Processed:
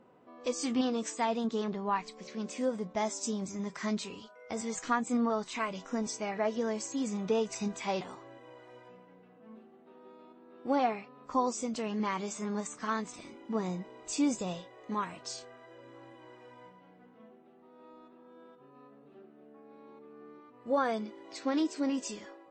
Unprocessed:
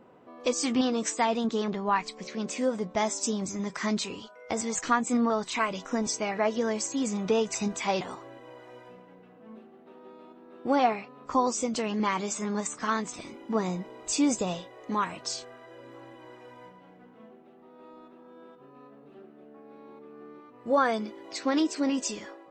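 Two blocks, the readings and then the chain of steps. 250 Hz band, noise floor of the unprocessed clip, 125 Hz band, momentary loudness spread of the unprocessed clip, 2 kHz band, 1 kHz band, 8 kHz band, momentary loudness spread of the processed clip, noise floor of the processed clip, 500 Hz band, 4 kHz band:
-4.0 dB, -54 dBFS, -4.0 dB, 21 LU, -6.5 dB, -5.0 dB, -7.5 dB, 22 LU, -58 dBFS, -4.5 dB, -7.0 dB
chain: harmonic-percussive split harmonic +5 dB; gain -8.5 dB; MP3 40 kbps 22050 Hz

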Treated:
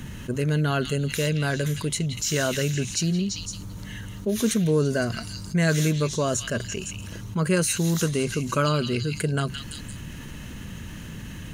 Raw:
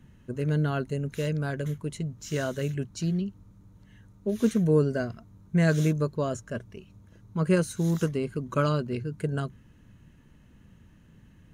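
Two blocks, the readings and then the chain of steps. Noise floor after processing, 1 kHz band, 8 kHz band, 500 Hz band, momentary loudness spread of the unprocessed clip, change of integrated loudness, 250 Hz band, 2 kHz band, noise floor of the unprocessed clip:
-38 dBFS, +5.0 dB, +15.0 dB, +2.5 dB, 13 LU, +3.5 dB, +2.5 dB, +7.0 dB, -56 dBFS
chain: high shelf 2000 Hz +10 dB; on a send: delay with a stepping band-pass 0.17 s, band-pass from 3000 Hz, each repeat 0.7 oct, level -6.5 dB; on the sum: fast leveller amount 50%; gain -1 dB

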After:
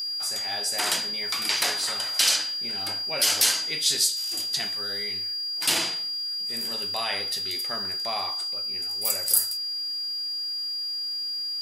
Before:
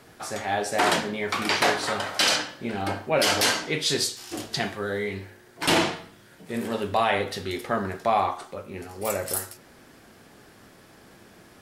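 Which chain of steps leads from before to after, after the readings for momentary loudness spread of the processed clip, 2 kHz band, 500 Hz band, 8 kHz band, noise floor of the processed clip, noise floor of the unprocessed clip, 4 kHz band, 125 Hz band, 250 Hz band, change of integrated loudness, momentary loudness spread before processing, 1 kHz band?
7 LU, -5.0 dB, -12.0 dB, +6.0 dB, -31 dBFS, -53 dBFS, +5.5 dB, -14.0 dB, -13.5 dB, +1.0 dB, 13 LU, -10.0 dB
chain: whine 4800 Hz -30 dBFS; pre-emphasis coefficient 0.9; gain +6 dB

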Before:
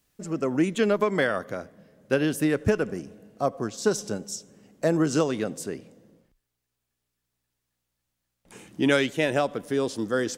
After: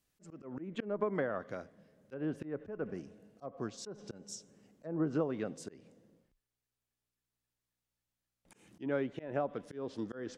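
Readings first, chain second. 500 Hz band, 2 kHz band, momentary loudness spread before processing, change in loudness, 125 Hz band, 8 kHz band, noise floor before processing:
-13.0 dB, -17.5 dB, 13 LU, -13.0 dB, -12.5 dB, -16.5 dB, -82 dBFS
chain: treble ducked by the level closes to 1100 Hz, closed at -19 dBFS; auto swell 0.189 s; gain -9 dB

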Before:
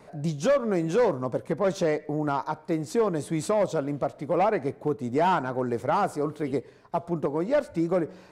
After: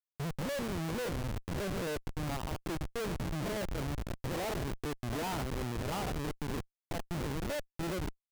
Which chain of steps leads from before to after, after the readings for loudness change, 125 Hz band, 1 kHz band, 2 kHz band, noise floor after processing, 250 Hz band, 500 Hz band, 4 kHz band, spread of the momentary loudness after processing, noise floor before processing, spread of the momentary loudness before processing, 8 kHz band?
-10.5 dB, -4.0 dB, -13.0 dB, -5.0 dB, under -85 dBFS, -9.5 dB, -14.0 dB, +0.5 dB, 4 LU, -51 dBFS, 7 LU, -2.5 dB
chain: stepped spectrum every 0.1 s; Schmitt trigger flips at -29 dBFS; gain -6 dB

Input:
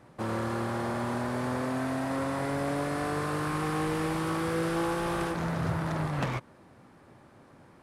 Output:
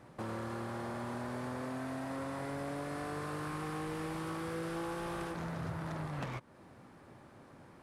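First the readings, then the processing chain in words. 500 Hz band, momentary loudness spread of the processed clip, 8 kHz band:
-9.0 dB, 18 LU, -9.0 dB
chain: compressor 2:1, threshold -42 dBFS, peak gain reduction 9.5 dB; gain -1 dB

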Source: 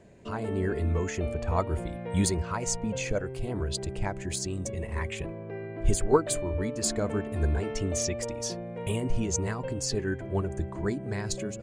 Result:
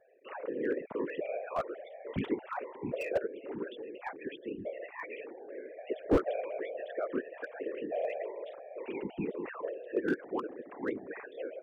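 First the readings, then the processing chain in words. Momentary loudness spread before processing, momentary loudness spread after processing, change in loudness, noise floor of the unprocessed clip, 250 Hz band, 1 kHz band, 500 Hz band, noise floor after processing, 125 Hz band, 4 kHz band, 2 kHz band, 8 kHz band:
7 LU, 10 LU, -6.5 dB, -39 dBFS, -5.5 dB, -5.5 dB, -3.5 dB, -51 dBFS, -19.0 dB, -17.0 dB, -3.5 dB, under -35 dB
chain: sine-wave speech; whisperiser; slew limiter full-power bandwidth 71 Hz; gain -5.5 dB

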